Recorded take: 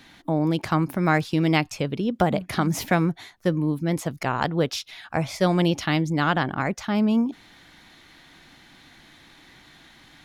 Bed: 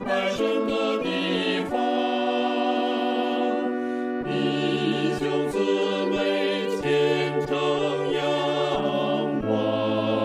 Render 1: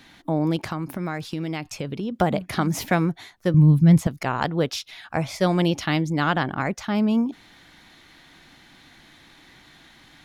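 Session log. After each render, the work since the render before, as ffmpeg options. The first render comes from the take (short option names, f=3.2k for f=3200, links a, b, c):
-filter_complex "[0:a]asettb=1/sr,asplit=3[a][b][c];[a]atrim=end=0.564[d];[b]atrim=start=0.56:end=2.12,asetpts=PTS-STARTPTS,afade=t=in:d=0.004:c=qsin,afade=t=out:st=1.556:d=0.004:c=qsin,acompressor=threshold=-24dB:ratio=6:attack=3.2:release=140:knee=1:detection=peak[e];[c]atrim=start=2.116[f];[d][e]acrossfade=d=0.004:c1=hsin:c2=qsin[g];[g][f]acrossfade=d=0.004:c1=qsin:c2=hsin,asettb=1/sr,asplit=3[h][i][j];[h]atrim=end=3.544[k];[i]atrim=start=3.54:end=4.07,asetpts=PTS-STARTPTS,afade=t=in:d=0.004:c=qsin,afade=t=out:st=0.526:d=0.004:c=qsin,lowshelf=f=230:t=q:w=1.5:g=11.5[l];[j]atrim=start=4.066[m];[k][l]acrossfade=d=0.004:c1=hsin:c2=qsin[n];[n][m]acrossfade=d=0.004:c1=qsin:c2=hsin"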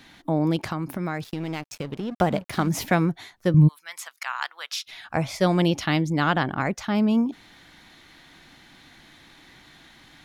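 -filter_complex "[0:a]asettb=1/sr,asplit=3[a][b][c];[a]atrim=end=1.244[d];[b]atrim=start=1.24:end=2.69,asetpts=PTS-STARTPTS,afade=t=in:d=0.004:c=qsin,afade=t=out:st=1.446:d=0.004:c=qsin,aeval=exprs='sgn(val(0))*max(abs(val(0))-0.0106,0)':c=same[e];[c]atrim=start=2.686[f];[d][e]acrossfade=d=0.004:c1=hsin:c2=qsin[g];[g][f]acrossfade=d=0.004:c1=qsin:c2=hsin,asplit=3[h][i][j];[h]afade=t=out:st=3.67:d=0.02[k];[i]highpass=f=1.1k:w=0.5412,highpass=f=1.1k:w=1.3066,afade=t=in:st=3.67:d=0.02,afade=t=out:st=4.86:d=0.02[l];[j]afade=t=in:st=4.86:d=0.02[m];[k][l][m]amix=inputs=3:normalize=0"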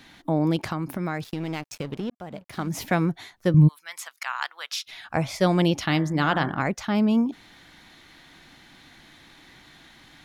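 -filter_complex "[0:a]asettb=1/sr,asplit=3[a][b][c];[a]atrim=end=5.884[d];[b]atrim=start=5.88:end=6.59,asetpts=PTS-STARTPTS,afade=t=in:d=0.004:c=qsin,afade=t=out:st=0.706:d=0.004:c=qsin,bandreject=f=56.51:t=h:w=4,bandreject=f=113.02:t=h:w=4,bandreject=f=169.53:t=h:w=4,bandreject=f=226.04:t=h:w=4,bandreject=f=282.55:t=h:w=4,bandreject=f=339.06:t=h:w=4,bandreject=f=395.57:t=h:w=4,bandreject=f=452.08:t=h:w=4,bandreject=f=508.59:t=h:w=4,bandreject=f=565.1:t=h:w=4,bandreject=f=621.61:t=h:w=4,bandreject=f=678.12:t=h:w=4,bandreject=f=734.63:t=h:w=4,bandreject=f=791.14:t=h:w=4,bandreject=f=847.65:t=h:w=4,bandreject=f=904.16:t=h:w=4,bandreject=f=960.67:t=h:w=4,bandreject=f=1.01718k:t=h:w=4,bandreject=f=1.07369k:t=h:w=4,bandreject=f=1.1302k:t=h:w=4,bandreject=f=1.18671k:t=h:w=4,bandreject=f=1.24322k:t=h:w=4,bandreject=f=1.29973k:t=h:w=4,bandreject=f=1.35624k:t=h:w=4,bandreject=f=1.41275k:t=h:w=4,bandreject=f=1.46926k:t=h:w=4,bandreject=f=1.52577k:t=h:w=4,bandreject=f=1.58228k:t=h:w=4,bandreject=f=1.63879k:t=h:w=4,bandreject=f=1.6953k:t=h:w=4,bandreject=f=1.75181k:t=h:w=4,bandreject=f=1.80832k:t=h:w=4,bandreject=f=1.86483k:t=h:w=4,bandreject=f=1.92134k:t=h:w=4,bandreject=f=1.97785k:t=h:w=4,bandreject=f=2.03436k:t=h:w=4[e];[c]atrim=start=6.586[f];[d][e]acrossfade=d=0.004:c1=hsin:c2=qsin[g];[g][f]acrossfade=d=0.004:c1=qsin:c2=hsin,asplit=2[h][i];[h]atrim=end=2.1,asetpts=PTS-STARTPTS,afade=t=out:st=2.096:d=0.004:c=hsin[j];[i]atrim=start=2.1,asetpts=PTS-STARTPTS,afade=t=in:d=1.07[k];[j][k]concat=n=2:v=0:a=1"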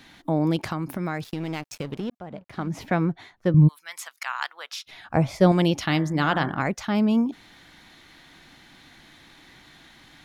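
-filter_complex "[0:a]asplit=3[a][b][c];[a]afade=t=out:st=2.17:d=0.02[d];[b]aemphasis=mode=reproduction:type=75kf,afade=t=in:st=2.17:d=0.02,afade=t=out:st=3.67:d=0.02[e];[c]afade=t=in:st=3.67:d=0.02[f];[d][e][f]amix=inputs=3:normalize=0,asettb=1/sr,asplit=3[g][h][i];[g]atrim=end=4.534[j];[h]atrim=start=4.53:end=5.52,asetpts=PTS-STARTPTS,afade=t=in:d=0.004:c=qsin,afade=t=out:st=0.986:d=0.004:c=qsin,tiltshelf=f=1.1k:g=5.5[k];[i]atrim=start=5.516[l];[j][k]acrossfade=d=0.004:c1=hsin:c2=qsin[m];[m][l]acrossfade=d=0.004:c1=qsin:c2=hsin"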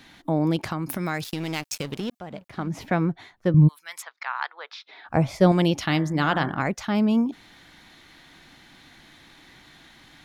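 -filter_complex "[0:a]asettb=1/sr,asplit=3[a][b][c];[a]atrim=end=0.864[d];[b]atrim=start=0.86:end=2.48,asetpts=PTS-STARTPTS,afade=t=in:d=0.004:c=qsin,afade=t=out:st=1.616:d=0.004:c=qsin,highshelf=f=2.4k:g=10.5[e];[c]atrim=start=2.476[f];[d][e]acrossfade=d=0.004:c1=hsin:c2=qsin[g];[g][f]acrossfade=d=0.004:c1=qsin:c2=hsin,asplit=3[h][i][j];[h]afade=t=out:st=4.01:d=0.02[k];[i]highpass=f=290:w=0.5412,highpass=f=290:w=1.3066,equalizer=f=440:t=q:w=4:g=6,equalizer=f=890:t=q:w=4:g=3,equalizer=f=2.9k:t=q:w=4:g=-8,lowpass=f=4.1k:w=0.5412,lowpass=f=4.1k:w=1.3066,afade=t=in:st=4.01:d=0.02,afade=t=out:st=5.07:d=0.02[l];[j]afade=t=in:st=5.07:d=0.02[m];[k][l][m]amix=inputs=3:normalize=0"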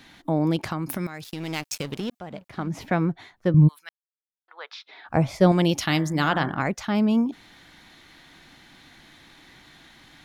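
-filter_complex "[0:a]asettb=1/sr,asplit=3[a][b][c];[a]atrim=end=5.694[d];[b]atrim=start=5.69:end=6.29,asetpts=PTS-STARTPTS,afade=t=in:d=0.004:c=qsin,afade=t=out:st=0.596:d=0.004:c=qsin,aemphasis=mode=production:type=cd[e];[c]atrim=start=6.286[f];[d][e]acrossfade=d=0.004:c1=hsin:c2=qsin[g];[g][f]acrossfade=d=0.004:c1=qsin:c2=hsin,asplit=4[h][i][j][k];[h]atrim=end=1.07,asetpts=PTS-STARTPTS,afade=t=out:st=1.066:d=0.004:c=hsin:silence=0.223872[l];[i]atrim=start=1.07:end=3.89,asetpts=PTS-STARTPTS,afade=t=in:d=0.52:silence=0.223872,afade=t=out:st=2.816:d=0.004:c=hsin[m];[j]atrim=start=3.89:end=4.48,asetpts=PTS-STARTPTS,volume=0[n];[k]atrim=start=4.48,asetpts=PTS-STARTPTS,afade=t=in:d=0.004:c=hsin[o];[l][m][n][o]concat=n=4:v=0:a=1"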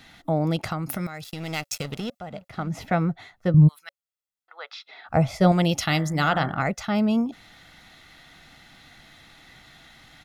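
-af "bandreject=f=560:w=18,aecho=1:1:1.5:0.45"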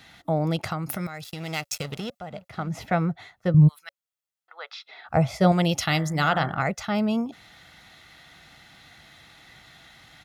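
-af "highpass=50,equalizer=f=260:w=2.2:g=-4.5"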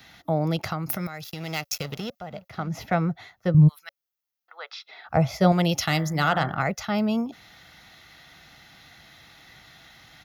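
-filter_complex "[0:a]acrossover=split=390|1800|3600[a][b][c][d];[c]asoftclip=type=hard:threshold=-26.5dB[e];[d]aexciter=amount=1.1:drive=3.1:freq=4.8k[f];[a][b][e][f]amix=inputs=4:normalize=0"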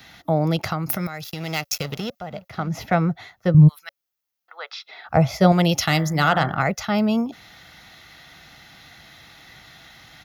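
-af "volume=4dB,alimiter=limit=-3dB:level=0:latency=1"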